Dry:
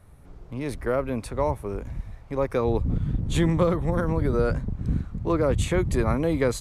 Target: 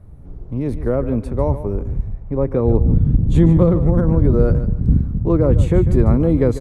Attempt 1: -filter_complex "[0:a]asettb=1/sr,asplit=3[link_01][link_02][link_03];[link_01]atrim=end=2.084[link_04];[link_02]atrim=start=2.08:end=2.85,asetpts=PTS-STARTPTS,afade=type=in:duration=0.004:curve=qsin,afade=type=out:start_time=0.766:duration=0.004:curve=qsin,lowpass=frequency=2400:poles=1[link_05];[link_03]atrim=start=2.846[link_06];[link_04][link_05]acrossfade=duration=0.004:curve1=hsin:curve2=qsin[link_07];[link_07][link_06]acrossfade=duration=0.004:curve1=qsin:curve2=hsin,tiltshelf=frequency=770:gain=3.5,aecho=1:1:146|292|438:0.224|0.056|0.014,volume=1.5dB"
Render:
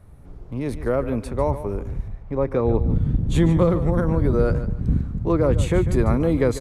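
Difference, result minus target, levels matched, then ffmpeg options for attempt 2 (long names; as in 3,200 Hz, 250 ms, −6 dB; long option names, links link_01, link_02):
1,000 Hz band +6.0 dB
-filter_complex "[0:a]asettb=1/sr,asplit=3[link_01][link_02][link_03];[link_01]atrim=end=2.084[link_04];[link_02]atrim=start=2.08:end=2.85,asetpts=PTS-STARTPTS,afade=type=in:duration=0.004:curve=qsin,afade=type=out:start_time=0.766:duration=0.004:curve=qsin,lowpass=frequency=2400:poles=1[link_05];[link_03]atrim=start=2.846[link_06];[link_04][link_05]acrossfade=duration=0.004:curve1=hsin:curve2=qsin[link_07];[link_07][link_06]acrossfade=duration=0.004:curve1=qsin:curve2=hsin,tiltshelf=frequency=770:gain=10,aecho=1:1:146|292|438:0.224|0.056|0.014,volume=1.5dB"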